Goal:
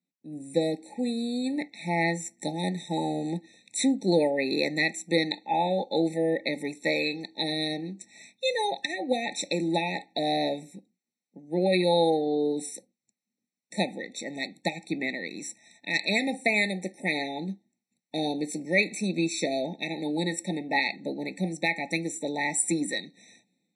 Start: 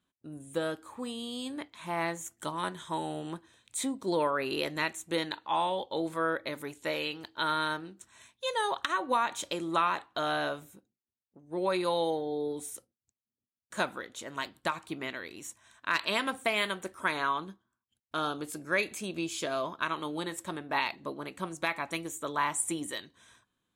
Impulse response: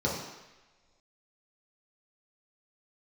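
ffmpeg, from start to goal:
-af "highpass=frequency=180:width=0.5412,highpass=frequency=180:width=1.3066,equalizer=frequency=180:width_type=q:width=4:gain=7,equalizer=frequency=390:width_type=q:width=4:gain=-6,equalizer=frequency=650:width_type=q:width=4:gain=-6,equalizer=frequency=1100:width_type=q:width=4:gain=-10,equalizer=frequency=3100:width_type=q:width=4:gain=-7,lowpass=frequency=8800:width=0.5412,lowpass=frequency=8800:width=1.3066,dynaudnorm=framelen=120:gausssize=5:maxgain=15.5dB,afftfilt=real='re*eq(mod(floor(b*sr/1024/890),2),0)':imag='im*eq(mod(floor(b*sr/1024/890),2),0)':win_size=1024:overlap=0.75,volume=-5.5dB"

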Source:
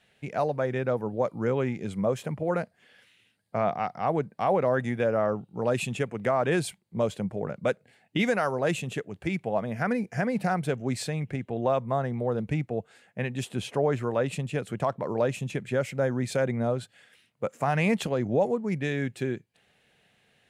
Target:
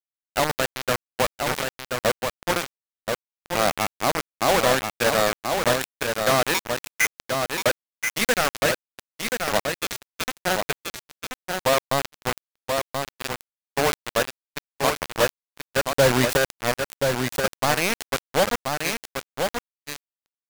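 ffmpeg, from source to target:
ffmpeg -i in.wav -filter_complex "[0:a]acrossover=split=500[link_01][link_02];[link_01]asoftclip=type=tanh:threshold=-29dB[link_03];[link_03][link_02]amix=inputs=2:normalize=0,asettb=1/sr,asplit=3[link_04][link_05][link_06];[link_04]atrim=end=6.544[link_07];[link_05]atrim=start=6.54:end=7.13,asetpts=PTS-STARTPTS,afade=type=in:duration=0.004:curve=qsin,afade=type=out:start_time=0.586:duration=0.004:curve=qsin,lowpass=frequency=2200:width_type=q:width=0.5098,lowpass=frequency=2200:width_type=q:width=0.6013,lowpass=frequency=2200:width_type=q:width=0.9,lowpass=frequency=2200:width_type=q:width=2.563,afreqshift=-2600[link_08];[link_06]atrim=start=7.126[link_09];[link_07][link_08]acrossfade=duration=0.004:curve1=hsin:curve2=qsin[link_10];[link_10][link_09]acrossfade=duration=0.004:curve1=qsin:curve2=hsin,asettb=1/sr,asplit=3[link_11][link_12][link_13];[link_11]atrim=end=15.854[link_14];[link_12]atrim=start=15.85:end=16.37,asetpts=PTS-STARTPTS,afade=type=in:duration=0.004:curve=qsin,afade=type=out:start_time=0.516:duration=0.004:curve=qsin,acontrast=60[link_15];[link_13]atrim=start=16.366[link_16];[link_14][link_15]acrossfade=duration=0.004:curve1=hsin:curve2=qsin[link_17];[link_17][link_16]acrossfade=duration=0.004:curve1=qsin:curve2=hsin,aeval=exprs='val(0)+0.000708*(sin(2*PI*50*n/s)+sin(2*PI*2*50*n/s)/2+sin(2*PI*3*50*n/s)/3+sin(2*PI*4*50*n/s)/4+sin(2*PI*5*50*n/s)/5)':channel_layout=same,asettb=1/sr,asplit=3[link_18][link_19][link_20];[link_18]atrim=end=9.644[link_21];[link_19]atrim=start=9.64:end=10.27,asetpts=PTS-STARTPTS,afade=type=in:duration=0.004:curve=qsin,afade=type=out:start_time=0.626:duration=0.004:curve=qsin,aeval=exprs='val(0)*sin(2*PI*1900*n/s)':channel_layout=same[link_22];[link_20]atrim=start=10.266[link_23];[link_21][link_22]acrossfade=duration=0.004:curve1=hsin:curve2=qsin[link_24];[link_24][link_23]acrossfade=duration=0.004:curve1=qsin:curve2=hsin,acrusher=bits=3:mix=0:aa=0.000001,agate=range=-33dB:threshold=-36dB:ratio=3:detection=peak,asplit=2[link_25][link_26];[link_26]aecho=0:1:1031:0.562[link_27];[link_25][link_27]amix=inputs=2:normalize=0,volume=4dB" out.wav

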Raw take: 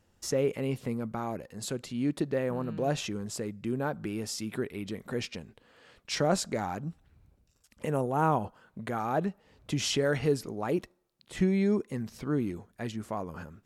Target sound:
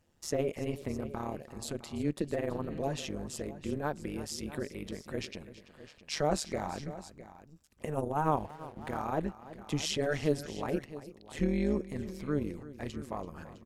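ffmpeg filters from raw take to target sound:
ffmpeg -i in.wav -filter_complex "[0:a]tremolo=f=150:d=0.857,bandreject=frequency=1400:width=21,asplit=2[link_01][link_02];[link_02]aecho=0:1:335|659:0.158|0.168[link_03];[link_01][link_03]amix=inputs=2:normalize=0,asettb=1/sr,asplit=3[link_04][link_05][link_06];[link_04]atrim=end=8.374[link_07];[link_05]atrim=start=8.37:end=8.98,asetpts=PTS-STARTPTS,afade=type=in:duration=0.004:curve=qsin,afade=type=out:start_time=0.606:duration=0.004:curve=qsin,aeval=exprs='sgn(val(0))*max(abs(val(0))-0.00178,0)':channel_layout=same[link_08];[link_06]atrim=start=8.976[link_09];[link_07][link_08]acrossfade=duration=0.004:curve1=hsin:curve2=qsin[link_10];[link_10][link_09]acrossfade=duration=0.004:curve1=qsin:curve2=hsin" out.wav

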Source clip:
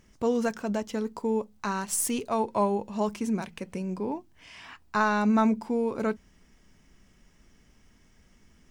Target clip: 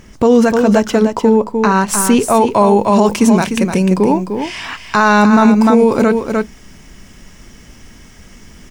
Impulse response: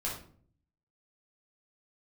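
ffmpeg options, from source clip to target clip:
-af "asetnsamples=nb_out_samples=441:pad=0,asendcmd='1.04 highshelf g -9.5;2.34 highshelf g 3',highshelf=frequency=3300:gain=-3,aecho=1:1:301:0.398,alimiter=level_in=20.5dB:limit=-1dB:release=50:level=0:latency=1,volume=-1dB"

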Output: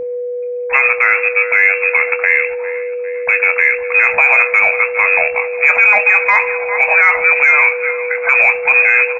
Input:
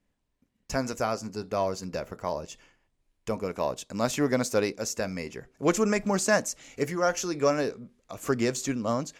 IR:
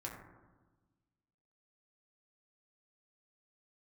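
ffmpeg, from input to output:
-filter_complex "[0:a]acrossover=split=310|960[link_01][link_02][link_03];[link_01]acrusher=bits=5:mix=0:aa=0.5[link_04];[link_04][link_02][link_03]amix=inputs=3:normalize=0,lowpass=frequency=2300:width_type=q:width=0.5098,lowpass=frequency=2300:width_type=q:width=0.6013,lowpass=frequency=2300:width_type=q:width=0.9,lowpass=frequency=2300:width_type=q:width=2.563,afreqshift=-2700,lowshelf=frequency=500:width_type=q:width=3:gain=-9.5,aecho=1:1:401|802|1203|1604:0.106|0.0583|0.032|0.0176,aeval=exprs='val(0)+0.01*sin(2*PI*490*n/s)':channel_layout=same,asplit=2[link_05][link_06];[link_06]adelay=24,volume=-11dB[link_07];[link_05][link_07]amix=inputs=2:normalize=0,acontrast=31,asplit=2[link_08][link_09];[1:a]atrim=start_sample=2205,adelay=66[link_10];[link_09][link_10]afir=irnorm=-1:irlink=0,volume=-21dB[link_11];[link_08][link_11]amix=inputs=2:normalize=0,alimiter=level_in=16.5dB:limit=-1dB:release=50:level=0:latency=1,volume=-1dB"

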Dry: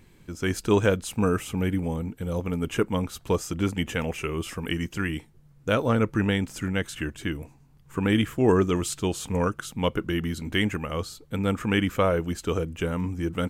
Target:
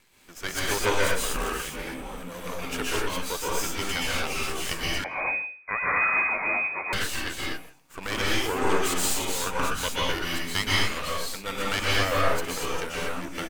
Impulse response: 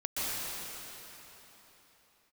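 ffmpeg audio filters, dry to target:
-filter_complex "[0:a]highpass=frequency=1400:poles=1,aeval=exprs='max(val(0),0)':channel_layout=same,asettb=1/sr,asplit=3[link_01][link_02][link_03];[link_01]atrim=end=1.174[link_04];[link_02]atrim=start=1.17:end=1.97,asetpts=PTS-STARTPTS,afade=type=in:duration=0.004:curve=qsin,afade=type=out:start_time=0.796:duration=0.004:curve=qsin,aeval=exprs='val(0)*sin(2*PI*33*n/s)':channel_layout=same[link_05];[link_03]atrim=start=1.966[link_06];[link_04][link_05]acrossfade=duration=0.004:curve1=hsin:curve2=qsin[link_07];[link_07][link_06]acrossfade=duration=0.004:curve1=qsin:curve2=hsin[link_08];[1:a]atrim=start_sample=2205,afade=type=out:start_time=0.31:duration=0.01,atrim=end_sample=14112[link_09];[link_08][link_09]afir=irnorm=-1:irlink=0,asettb=1/sr,asplit=3[link_10][link_11][link_12];[link_10]atrim=end=5.044[link_13];[link_11]atrim=start=5.04:end=6.93,asetpts=PTS-STARTPTS,afade=type=in:duration=0.004:curve=qsin,afade=type=out:start_time=1.886:duration=0.004:curve=qsin,lowpass=frequency=2100:width_type=q:width=0.5098,lowpass=frequency=2100:width_type=q:width=0.6013,lowpass=frequency=2100:width_type=q:width=0.9,lowpass=frequency=2100:width_type=q:width=2.563,afreqshift=-2500[link_14];[link_12]atrim=start=6.926[link_15];[link_13][link_14]acrossfade=duration=0.004:curve1=hsin:curve2=qsin[link_16];[link_16][link_15]acrossfade=duration=0.004:curve1=qsin:curve2=hsin,asplit=2[link_17][link_18];[link_18]adelay=160,highpass=300,lowpass=3400,asoftclip=type=hard:threshold=-25dB,volume=-20dB[link_19];[link_17][link_19]amix=inputs=2:normalize=0,volume=8dB"

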